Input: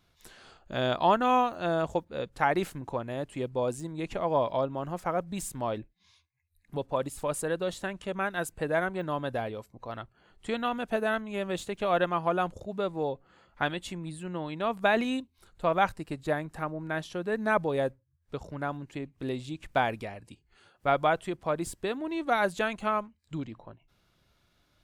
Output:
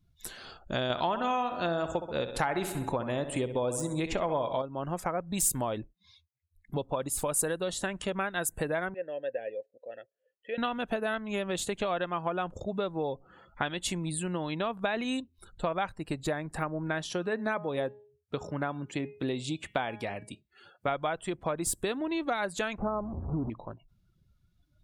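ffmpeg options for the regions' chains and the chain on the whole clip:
ffmpeg -i in.wav -filter_complex "[0:a]asettb=1/sr,asplit=3[link_01][link_02][link_03];[link_01]atrim=end=0.904[link_04];[link_02]atrim=start=0.9:end=4.62,asetpts=PTS-STARTPTS,afade=type=in:duration=0.004:curve=qsin,afade=type=out:start_time=3.716:duration=0.004:curve=qsin,acontrast=59,aecho=1:1:65|130|195|260|325|390:0.282|0.158|0.0884|0.0495|0.0277|0.0155,atrim=end_sample=164052[link_05];[link_03]atrim=start=4.616[link_06];[link_04][link_05]acrossfade=duration=0.004:curve1=hsin:curve2=qsin[link_07];[link_07][link_06]acrossfade=duration=0.004:curve1=qsin:curve2=hsin,asettb=1/sr,asplit=3[link_08][link_09][link_10];[link_08]atrim=end=8.944[link_11];[link_09]atrim=start=8.94:end=10.58,asetpts=PTS-STARTPTS,afade=type=in:duration=0.004:curve=qsin,afade=type=out:start_time=1.636:duration=0.004:curve=qsin,acrossover=split=3900[link_12][link_13];[link_13]acompressor=threshold=-58dB:ratio=4:attack=1:release=60[link_14];[link_12][link_14]amix=inputs=2:normalize=0,asplit=3[link_15][link_16][link_17];[link_15]bandpass=frequency=530:width_type=q:width=8,volume=0dB[link_18];[link_16]bandpass=frequency=1840:width_type=q:width=8,volume=-6dB[link_19];[link_17]bandpass=frequency=2480:width_type=q:width=8,volume=-9dB[link_20];[link_18][link_19][link_20]amix=inputs=3:normalize=0,equalizer=frequency=5600:width=1.3:gain=6[link_21];[link_10]atrim=start=10.576[link_22];[link_11][link_21]acrossfade=duration=0.004:curve1=hsin:curve2=qsin[link_23];[link_23][link_22]acrossfade=duration=0.004:curve1=qsin:curve2=hsin,asettb=1/sr,asplit=3[link_24][link_25][link_26];[link_24]atrim=end=17.104[link_27];[link_25]atrim=start=17.1:end=20.88,asetpts=PTS-STARTPTS,afade=type=in:duration=0.004:curve=qsin,afade=type=out:start_time=3.776:duration=0.004:curve=qsin,highpass=110,bandreject=frequency=208.2:width_type=h:width=4,bandreject=frequency=416.4:width_type=h:width=4,bandreject=frequency=624.6:width_type=h:width=4,bandreject=frequency=832.8:width_type=h:width=4,bandreject=frequency=1041:width_type=h:width=4,bandreject=frequency=1249.2:width_type=h:width=4,bandreject=frequency=1457.4:width_type=h:width=4,bandreject=frequency=1665.6:width_type=h:width=4,bandreject=frequency=1873.8:width_type=h:width=4,bandreject=frequency=2082:width_type=h:width=4,bandreject=frequency=2290.2:width_type=h:width=4,bandreject=frequency=2498.4:width_type=h:width=4,bandreject=frequency=2706.6:width_type=h:width=4,bandreject=frequency=2914.8:width_type=h:width=4,bandreject=frequency=3123:width_type=h:width=4,bandreject=frequency=3331.2:width_type=h:width=4,bandreject=frequency=3539.4:width_type=h:width=4,bandreject=frequency=3747.6:width_type=h:width=4,bandreject=frequency=3955.8:width_type=h:width=4,bandreject=frequency=4164:width_type=h:width=4,bandreject=frequency=4372.2:width_type=h:width=4,bandreject=frequency=4580.4:width_type=h:width=4,bandreject=frequency=4788.6:width_type=h:width=4,bandreject=frequency=4996.8:width_type=h:width=4,bandreject=frequency=5205:width_type=h:width=4,bandreject=frequency=5413.2:width_type=h:width=4,bandreject=frequency=5621.4:width_type=h:width=4,bandreject=frequency=5829.6:width_type=h:width=4,bandreject=frequency=6037.8:width_type=h:width=4[link_28];[link_26]atrim=start=20.876[link_29];[link_27][link_28]acrossfade=duration=0.004:curve1=hsin:curve2=qsin[link_30];[link_30][link_29]acrossfade=duration=0.004:curve1=qsin:curve2=hsin,asettb=1/sr,asplit=3[link_31][link_32][link_33];[link_31]atrim=end=22.784[link_34];[link_32]atrim=start=22.78:end=23.5,asetpts=PTS-STARTPTS,afade=type=in:duration=0.004:curve=qsin,afade=type=out:start_time=0.716:duration=0.004:curve=qsin,aeval=exprs='val(0)+0.5*0.0188*sgn(val(0))':channel_layout=same,lowpass=frequency=1000:width=0.5412,lowpass=frequency=1000:width=1.3066,aeval=exprs='val(0)+0.00501*(sin(2*PI*60*n/s)+sin(2*PI*2*60*n/s)/2+sin(2*PI*3*60*n/s)/3+sin(2*PI*4*60*n/s)/4+sin(2*PI*5*60*n/s)/5)':channel_layout=same[link_35];[link_33]atrim=start=23.496[link_36];[link_34][link_35]acrossfade=duration=0.004:curve1=hsin:curve2=qsin[link_37];[link_37][link_36]acrossfade=duration=0.004:curve1=qsin:curve2=hsin,acompressor=threshold=-34dB:ratio=6,afftdn=noise_reduction=24:noise_floor=-61,highshelf=frequency=5000:gain=11,volume=5.5dB" out.wav

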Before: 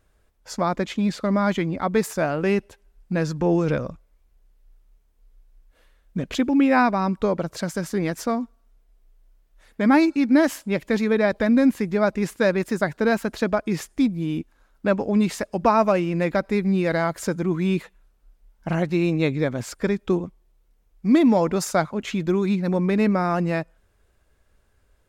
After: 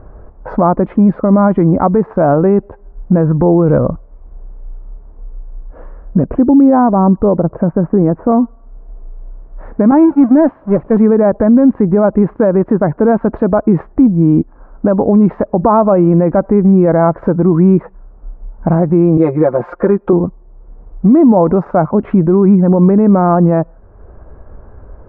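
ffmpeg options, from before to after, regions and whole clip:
ffmpeg -i in.wav -filter_complex "[0:a]asettb=1/sr,asplit=3[link_01][link_02][link_03];[link_01]atrim=end=6.254[link_04];[link_02]atrim=start=6.25:end=8.32,asetpts=PTS-STARTPTS,afade=type=in:duration=0.004:curve=qsin,afade=type=out:start_time=2.066:duration=0.004:curve=qsin,asuperstop=centerf=4400:order=12:qfactor=1.4,equalizer=frequency=4000:width=0.42:gain=-12[link_05];[link_03]atrim=start=8.316[link_06];[link_04][link_05]acrossfade=duration=0.004:curve1=hsin:curve2=qsin[link_07];[link_07][link_06]acrossfade=duration=0.004:curve1=qsin:curve2=hsin,asettb=1/sr,asplit=3[link_08][link_09][link_10];[link_08]atrim=end=9.914[link_11];[link_09]atrim=start=9.91:end=10.97,asetpts=PTS-STARTPTS,afade=type=in:duration=0.004:curve=qsin,afade=type=out:start_time=1.056:duration=0.004:curve=qsin,aeval=exprs='val(0)+0.5*0.0841*sgn(val(0))':channel_layout=same,agate=range=-33dB:threshold=-13dB:ratio=3:release=100:detection=peak[link_12];[link_10]atrim=start=10.966[link_13];[link_11][link_12]acrossfade=duration=0.004:curve1=hsin:curve2=qsin[link_14];[link_14][link_13]acrossfade=duration=0.004:curve1=qsin:curve2=hsin,asettb=1/sr,asplit=3[link_15][link_16][link_17];[link_15]atrim=end=19.174[link_18];[link_16]atrim=start=19.17:end=20.13,asetpts=PTS-STARTPTS,afade=type=in:duration=0.004:curve=qsin,afade=type=out:start_time=0.956:duration=0.004:curve=qsin,bass=frequency=250:gain=-15,treble=frequency=4000:gain=7,aecho=1:1:5.7:0.89,atrim=end_sample=42336[link_19];[link_17]atrim=start=20.126[link_20];[link_18][link_19]acrossfade=duration=0.004:curve1=hsin:curve2=qsin[link_21];[link_21][link_20]acrossfade=duration=0.004:curve1=qsin:curve2=hsin,lowpass=frequency=1100:width=0.5412,lowpass=frequency=1100:width=1.3066,acompressor=threshold=-56dB:ratio=1.5,alimiter=level_in=29.5dB:limit=-1dB:release=50:level=0:latency=1,volume=-1dB" out.wav

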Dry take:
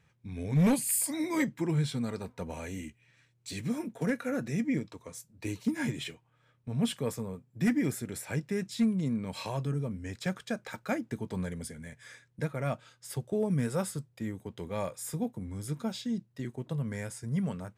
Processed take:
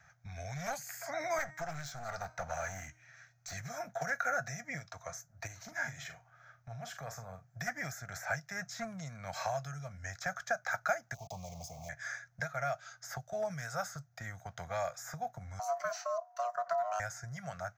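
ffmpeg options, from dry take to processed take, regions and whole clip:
ffmpeg -i in.wav -filter_complex "[0:a]asettb=1/sr,asplit=3[link_01][link_02][link_03];[link_01]atrim=end=1.384[link_04];[link_02]atrim=start=1.38:end=3.53,asetpts=PTS-STARTPTS,afade=type=in:duration=0.004:curve=qsin,afade=type=out:start_time=2.146:duration=0.004:curve=qsin,bandreject=frequency=311.8:width_type=h:width=4,bandreject=frequency=623.6:width_type=h:width=4,bandreject=frequency=935.4:width_type=h:width=4,bandreject=frequency=1247.2:width_type=h:width=4,bandreject=frequency=1559:width_type=h:width=4,bandreject=frequency=1870.8:width_type=h:width=4,bandreject=frequency=2182.6:width_type=h:width=4,bandreject=frequency=2494.4:width_type=h:width=4,bandreject=frequency=2806.2:width_type=h:width=4,bandreject=frequency=3118:width_type=h:width=4,bandreject=frequency=3429.8:width_type=h:width=4,bandreject=frequency=3741.6:width_type=h:width=4,bandreject=frequency=4053.4:width_type=h:width=4,bandreject=frequency=4365.2:width_type=h:width=4,bandreject=frequency=4677:width_type=h:width=4,bandreject=frequency=4988.8:width_type=h:width=4,bandreject=frequency=5300.6:width_type=h:width=4,bandreject=frequency=5612.4:width_type=h:width=4,bandreject=frequency=5924.2:width_type=h:width=4,bandreject=frequency=6236:width_type=h:width=4,bandreject=frequency=6547.8:width_type=h:width=4,bandreject=frequency=6859.6:width_type=h:width=4,bandreject=frequency=7171.4:width_type=h:width=4,bandreject=frequency=7483.2:width_type=h:width=4,bandreject=frequency=7795:width_type=h:width=4,bandreject=frequency=8106.8:width_type=h:width=4,bandreject=frequency=8418.6:width_type=h:width=4,bandreject=frequency=8730.4:width_type=h:width=4,bandreject=frequency=9042.2:width_type=h:width=4,bandreject=frequency=9354:width_type=h:width=4,bandreject=frequency=9665.8:width_type=h:width=4,aeval=exprs='clip(val(0),-1,0.0119)':channel_layout=same[link_05];[link_03]atrim=start=3.526[link_06];[link_04][link_05]acrossfade=duration=0.004:curve1=hsin:curve2=qsin[link_07];[link_07][link_06]acrossfade=duration=0.004:curve1=qsin:curve2=hsin,asettb=1/sr,asplit=3[link_08][link_09][link_10];[link_08]atrim=end=5.474[link_11];[link_09]atrim=start=5.47:end=7.48,asetpts=PTS-STARTPTS,afade=type=in:duration=0.004:curve=qsin,afade=type=out:start_time=2.006:duration=0.004:curve=qsin,acompressor=threshold=-52dB:ratio=1.5:attack=3.2:release=140:knee=1:detection=peak,asplit=2[link_12][link_13];[link_13]adelay=43,volume=-10dB[link_14];[link_12][link_14]amix=inputs=2:normalize=0,atrim=end_sample=88641[link_15];[link_10]atrim=start=7.476[link_16];[link_11][link_15]acrossfade=duration=0.004:curve1=hsin:curve2=qsin[link_17];[link_17][link_16]acrossfade=duration=0.004:curve1=qsin:curve2=hsin,asettb=1/sr,asplit=3[link_18][link_19][link_20];[link_18]atrim=end=11.144[link_21];[link_19]atrim=start=11.14:end=11.89,asetpts=PTS-STARTPTS,afade=type=in:duration=0.004:curve=qsin,afade=type=out:start_time=0.746:duration=0.004:curve=qsin,acompressor=threshold=-38dB:ratio=2:attack=3.2:release=140:knee=1:detection=peak,aeval=exprs='val(0)*gte(abs(val(0)),0.00355)':channel_layout=same,asuperstop=centerf=1600:order=8:qfactor=1.1[link_22];[link_20]atrim=start=11.886[link_23];[link_21][link_22]acrossfade=duration=0.004:curve1=hsin:curve2=qsin[link_24];[link_24][link_23]acrossfade=duration=0.004:curve1=qsin:curve2=hsin,asettb=1/sr,asplit=3[link_25][link_26][link_27];[link_25]atrim=end=15.594[link_28];[link_26]atrim=start=15.59:end=17,asetpts=PTS-STARTPTS,afade=type=in:duration=0.004:curve=qsin,afade=type=out:start_time=1.406:duration=0.004:curve=qsin,aeval=exprs='val(0)*sin(2*PI*840*n/s)':channel_layout=same,highpass=frequency=150:width=0.5412,highpass=frequency=150:width=1.3066,acrossover=split=330|3000[link_29][link_30][link_31];[link_30]acompressor=threshold=-43dB:ratio=2:attack=3.2:release=140:knee=2.83:detection=peak[link_32];[link_29][link_32][link_31]amix=inputs=3:normalize=0[link_33];[link_27]atrim=start=16.996[link_34];[link_28][link_33]acrossfade=duration=0.004:curve1=hsin:curve2=qsin[link_35];[link_35][link_34]acrossfade=duration=0.004:curve1=qsin:curve2=hsin,firequalizer=gain_entry='entry(140,0);entry(230,-20);entry(400,-28);entry(690,4);entry(970,-15);entry(1400,1);entry(2800,-18);entry(6300,13);entry(9000,-17);entry(14000,5)':delay=0.05:min_phase=1,acrossover=split=2200|7100[link_36][link_37][link_38];[link_36]acompressor=threshold=-45dB:ratio=4[link_39];[link_37]acompressor=threshold=-57dB:ratio=4[link_40];[link_38]acompressor=threshold=-51dB:ratio=4[link_41];[link_39][link_40][link_41]amix=inputs=3:normalize=0,acrossover=split=490 3500:gain=0.178 1 0.141[link_42][link_43][link_44];[link_42][link_43][link_44]amix=inputs=3:normalize=0,volume=15.5dB" out.wav

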